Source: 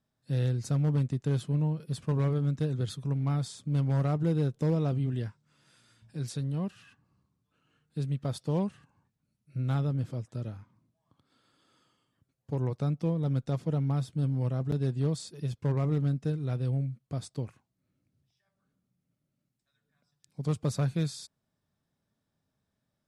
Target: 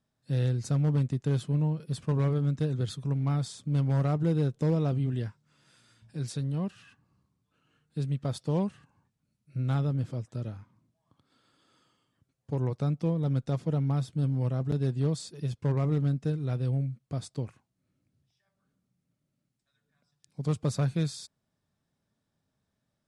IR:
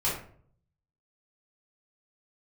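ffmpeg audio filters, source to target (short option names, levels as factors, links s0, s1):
-af "lowpass=f=11000:w=0.5412,lowpass=f=11000:w=1.3066,volume=1.12"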